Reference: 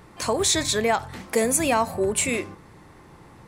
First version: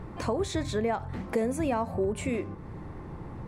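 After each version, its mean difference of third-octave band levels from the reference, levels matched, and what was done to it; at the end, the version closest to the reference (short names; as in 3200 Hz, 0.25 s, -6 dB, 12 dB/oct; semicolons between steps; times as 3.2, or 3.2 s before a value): 7.0 dB: tilt -2 dB/oct; compressor 2:1, threshold -38 dBFS, peak gain reduction 12.5 dB; high shelf 2700 Hz -10 dB; gain +4 dB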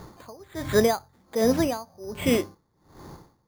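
10.5 dB: LPF 1500 Hz 12 dB/oct; careless resampling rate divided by 8×, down none, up hold; dB-linear tremolo 1.3 Hz, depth 29 dB; gain +6.5 dB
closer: first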